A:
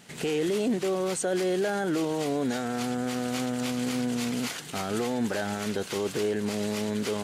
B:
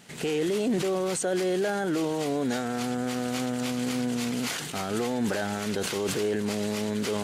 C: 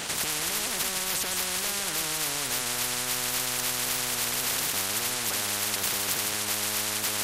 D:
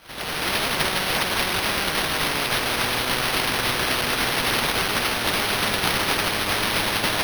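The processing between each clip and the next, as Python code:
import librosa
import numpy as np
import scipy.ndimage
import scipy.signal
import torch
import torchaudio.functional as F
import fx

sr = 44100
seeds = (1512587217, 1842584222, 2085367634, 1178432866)

y1 = fx.sustainer(x, sr, db_per_s=33.0)
y2 = y1 + 10.0 ** (-10.5 / 20.0) * np.pad(y1, (int(158 * sr / 1000.0), 0))[:len(y1)]
y2 = fx.spectral_comp(y2, sr, ratio=10.0)
y2 = y2 * librosa.db_to_amplitude(3.0)
y3 = fx.fade_in_head(y2, sr, length_s=0.51)
y3 = fx.quant_dither(y3, sr, seeds[0], bits=10, dither='triangular')
y3 = np.repeat(y3[::6], 6)[:len(y3)]
y3 = y3 * librosa.db_to_amplitude(6.0)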